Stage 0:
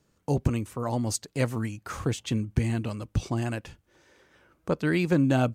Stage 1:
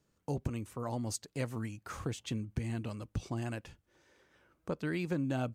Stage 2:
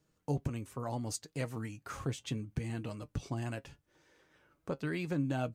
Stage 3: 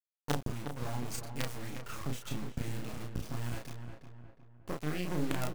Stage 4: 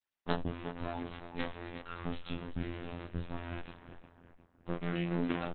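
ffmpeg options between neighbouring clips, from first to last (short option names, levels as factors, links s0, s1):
-af "acompressor=threshold=0.0501:ratio=2,volume=0.447"
-af "flanger=delay=6.3:depth=1.1:regen=59:speed=0.72:shape=sinusoidal,volume=1.58"
-filter_complex "[0:a]acrusher=bits=5:dc=4:mix=0:aa=0.000001,asplit=2[s0][s1];[s1]adelay=33,volume=0.708[s2];[s0][s2]amix=inputs=2:normalize=0,asplit=2[s3][s4];[s4]adelay=360,lowpass=f=2000:p=1,volume=0.422,asplit=2[s5][s6];[s6]adelay=360,lowpass=f=2000:p=1,volume=0.46,asplit=2[s7][s8];[s8]adelay=360,lowpass=f=2000:p=1,volume=0.46,asplit=2[s9][s10];[s10]adelay=360,lowpass=f=2000:p=1,volume=0.46,asplit=2[s11][s12];[s12]adelay=360,lowpass=f=2000:p=1,volume=0.46[s13];[s3][s5][s7][s9][s11][s13]amix=inputs=6:normalize=0,volume=1.12"
-af "afftfilt=real='hypot(re,im)*cos(PI*b)':imag='0':win_size=2048:overlap=0.75,aresample=22050,aresample=44100,volume=1.78" -ar 48000 -c:a libopus -b:a 8k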